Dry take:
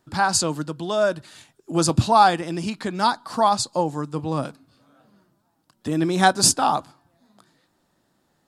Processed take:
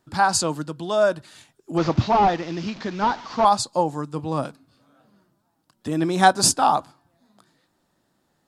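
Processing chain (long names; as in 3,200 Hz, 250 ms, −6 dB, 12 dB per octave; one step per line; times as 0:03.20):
0:01.77–0:03.45: linear delta modulator 32 kbit/s, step −33 dBFS
dynamic equaliser 810 Hz, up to +4 dB, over −28 dBFS, Q 0.82
level −1.5 dB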